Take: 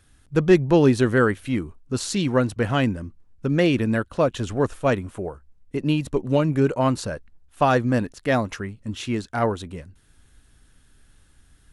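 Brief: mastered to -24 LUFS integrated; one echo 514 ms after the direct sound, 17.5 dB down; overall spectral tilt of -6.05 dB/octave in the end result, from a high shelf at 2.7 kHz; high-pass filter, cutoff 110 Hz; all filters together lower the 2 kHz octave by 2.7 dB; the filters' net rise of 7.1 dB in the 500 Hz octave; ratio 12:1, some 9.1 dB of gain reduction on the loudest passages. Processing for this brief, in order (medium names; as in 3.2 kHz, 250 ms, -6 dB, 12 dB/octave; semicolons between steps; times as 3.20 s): high-pass 110 Hz; peaking EQ 500 Hz +9 dB; peaking EQ 2 kHz -6.5 dB; treble shelf 2.7 kHz +5 dB; compression 12:1, threshold -16 dBFS; delay 514 ms -17.5 dB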